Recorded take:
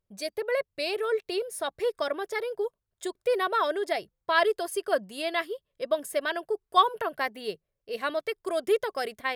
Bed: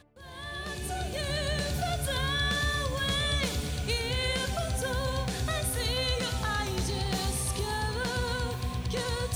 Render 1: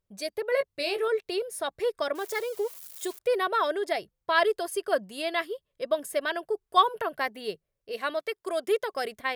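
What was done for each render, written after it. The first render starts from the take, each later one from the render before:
0:00.50–0:01.08: double-tracking delay 18 ms −6 dB
0:02.15–0:03.19: spike at every zero crossing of −33.5 dBFS
0:07.91–0:08.94: high-pass filter 270 Hz 6 dB per octave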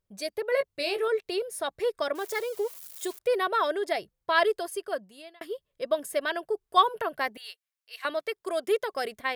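0:04.48–0:05.41: fade out
0:07.37–0:08.05: Bessel high-pass filter 1,600 Hz, order 4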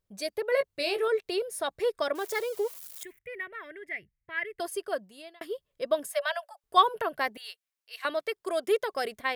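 0:03.03–0:04.60: drawn EQ curve 110 Hz 0 dB, 870 Hz −25 dB, 1,400 Hz −17 dB, 2,000 Hz +4 dB, 4,100 Hz −29 dB, 16,000 Hz −15 dB
0:06.07–0:06.64: Chebyshev high-pass filter 570 Hz, order 10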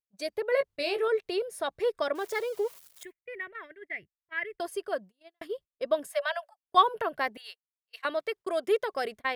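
noise gate −43 dBFS, range −30 dB
high-shelf EQ 5,500 Hz −7.5 dB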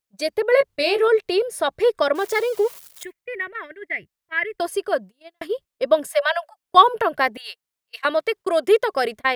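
level +10 dB
brickwall limiter −1 dBFS, peak gain reduction 1.5 dB

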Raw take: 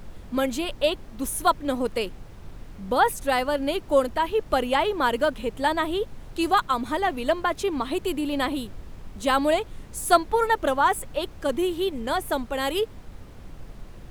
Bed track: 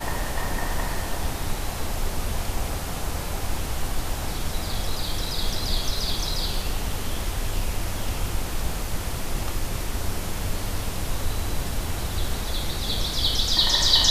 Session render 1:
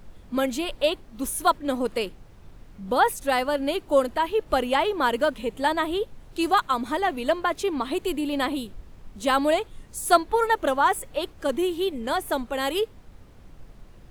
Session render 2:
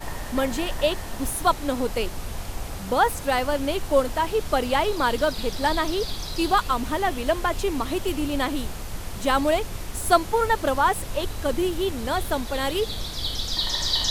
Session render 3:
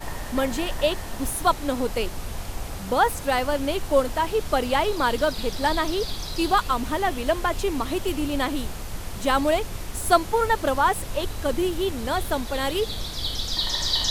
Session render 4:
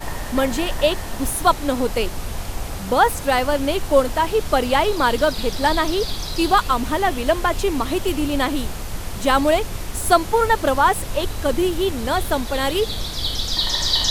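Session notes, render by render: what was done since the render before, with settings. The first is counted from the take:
noise reduction from a noise print 6 dB
mix in bed track −5.5 dB
no processing that can be heard
level +4.5 dB; brickwall limiter −2 dBFS, peak gain reduction 2 dB

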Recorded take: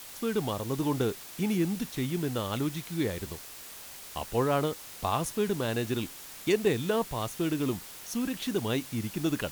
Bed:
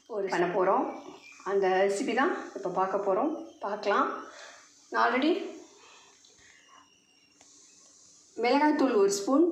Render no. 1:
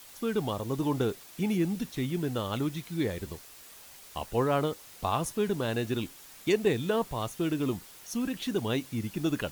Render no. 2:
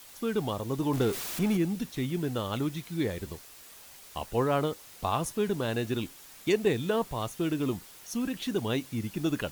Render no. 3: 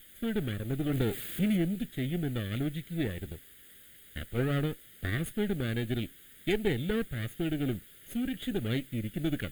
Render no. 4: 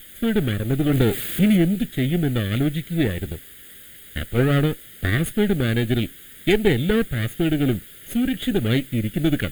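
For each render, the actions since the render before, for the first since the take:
broadband denoise 6 dB, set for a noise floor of −46 dBFS
0:00.93–0:01.57: converter with a step at zero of −32 dBFS
lower of the sound and its delayed copy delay 0.6 ms; phaser with its sweep stopped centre 2,400 Hz, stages 4
level +11 dB

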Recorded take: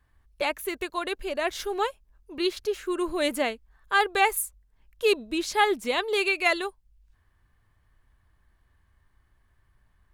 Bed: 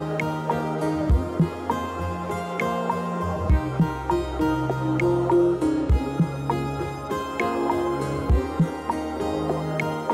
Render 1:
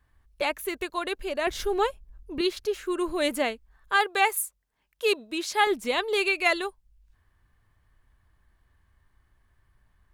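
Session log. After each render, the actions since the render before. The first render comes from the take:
0:01.47–0:02.41: low-shelf EQ 280 Hz +11.5 dB
0:03.96–0:05.67: high-pass filter 380 Hz 6 dB per octave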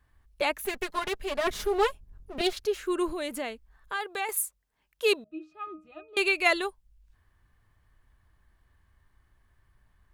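0:00.65–0:02.53: lower of the sound and its delayed copy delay 4.8 ms
0:03.13–0:04.29: downward compressor 2 to 1, threshold −35 dBFS
0:05.24–0:06.17: resonances in every octave D#, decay 0.25 s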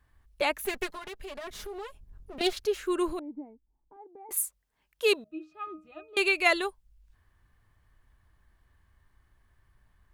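0:00.91–0:02.41: downward compressor 4 to 1, threshold −39 dBFS
0:03.19–0:04.31: formant resonators in series u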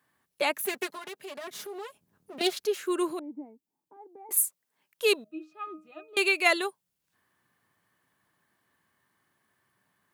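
high-pass filter 160 Hz 24 dB per octave
high-shelf EQ 7,400 Hz +7 dB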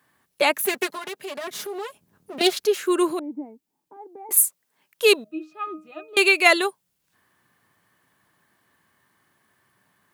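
level +7.5 dB
brickwall limiter −2 dBFS, peak gain reduction 0.5 dB

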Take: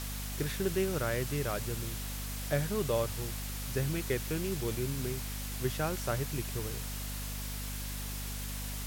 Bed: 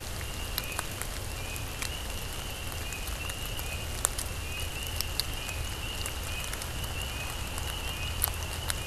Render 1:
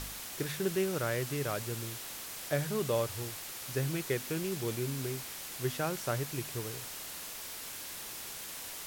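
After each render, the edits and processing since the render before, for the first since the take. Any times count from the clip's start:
hum removal 50 Hz, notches 5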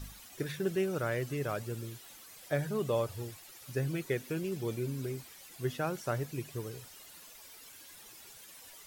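broadband denoise 13 dB, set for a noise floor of −43 dBFS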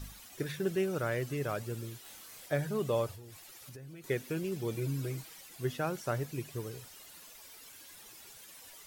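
0:02.02–0:02.46: double-tracking delay 28 ms −3 dB
0:03.11–0:04.04: downward compressor 12 to 1, threshold −45 dBFS
0:04.74–0:05.41: comb filter 6.3 ms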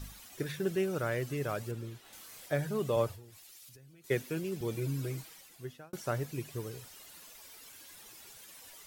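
0:01.71–0:02.13: high-shelf EQ 4,500 Hz −11 dB
0:02.96–0:04.61: multiband upward and downward expander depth 70%
0:05.18–0:05.93: fade out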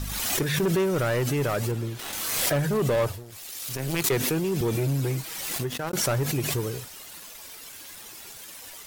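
leveller curve on the samples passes 3
background raised ahead of every attack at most 28 dB per second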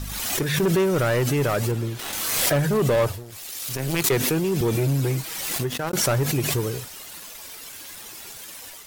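automatic gain control gain up to 3.5 dB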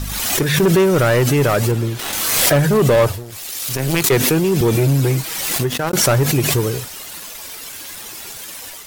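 level +7 dB
brickwall limiter −1 dBFS, peak gain reduction 3 dB

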